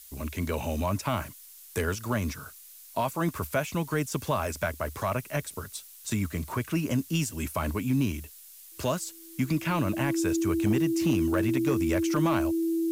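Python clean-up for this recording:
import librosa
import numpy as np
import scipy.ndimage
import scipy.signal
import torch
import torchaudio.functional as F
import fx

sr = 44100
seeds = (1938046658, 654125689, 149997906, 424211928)

y = fx.fix_declip(x, sr, threshold_db=-17.5)
y = fx.notch(y, sr, hz=330.0, q=30.0)
y = fx.noise_reduce(y, sr, print_start_s=8.29, print_end_s=8.79, reduce_db=25.0)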